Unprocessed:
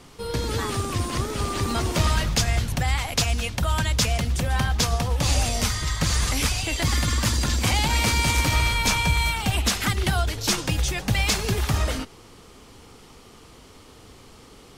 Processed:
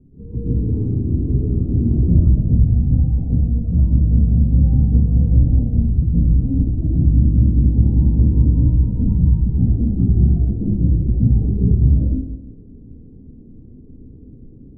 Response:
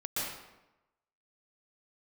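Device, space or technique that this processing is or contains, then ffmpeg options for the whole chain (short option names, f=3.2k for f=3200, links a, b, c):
next room: -filter_complex "[0:a]lowpass=f=290:w=0.5412,lowpass=f=290:w=1.3066[a];[1:a]atrim=start_sample=2205[b];[a][b]afir=irnorm=-1:irlink=0,volume=6dB"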